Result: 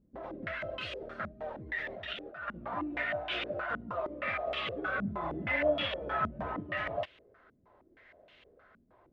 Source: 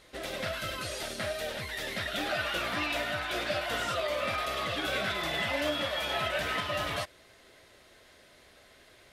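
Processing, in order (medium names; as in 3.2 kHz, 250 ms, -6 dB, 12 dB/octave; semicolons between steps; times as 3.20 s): 1.66–2.48 s: compressor with a negative ratio -39 dBFS, ratio -1; 4.98–6.63 s: bass shelf 320 Hz +6.5 dB; step-sequenced low-pass 6.4 Hz 220–2900 Hz; trim -6.5 dB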